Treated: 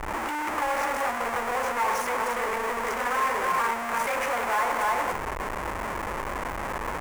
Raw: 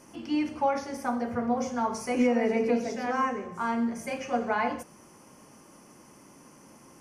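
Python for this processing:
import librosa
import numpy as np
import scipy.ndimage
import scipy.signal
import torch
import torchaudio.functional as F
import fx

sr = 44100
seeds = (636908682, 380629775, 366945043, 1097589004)

y = fx.over_compress(x, sr, threshold_db=-31.0, ratio=-1.0)
y = fx.peak_eq(y, sr, hz=710.0, db=-11.5, octaves=0.22, at=(1.73, 3.87))
y = y + 10.0 ** (-6.5 / 20.0) * np.pad(y, (int(295 * sr / 1000.0), 0))[:len(y)]
y = fx.dmg_buzz(y, sr, base_hz=60.0, harmonics=5, level_db=-63.0, tilt_db=-1, odd_only=False)
y = fx.schmitt(y, sr, flips_db=-44.0)
y = fx.graphic_eq(y, sr, hz=(125, 250, 500, 1000, 2000, 4000, 8000), db=(-10, -7, 4, 11, 9, -7, 3))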